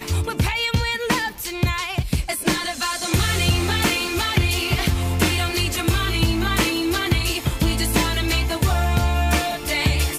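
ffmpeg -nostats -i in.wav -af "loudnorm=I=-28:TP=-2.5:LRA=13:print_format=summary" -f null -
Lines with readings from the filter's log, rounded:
Input Integrated:    -20.9 LUFS
Input True Peak:      -8.0 dBTP
Input LRA:             1.3 LU
Input Threshold:     -30.9 LUFS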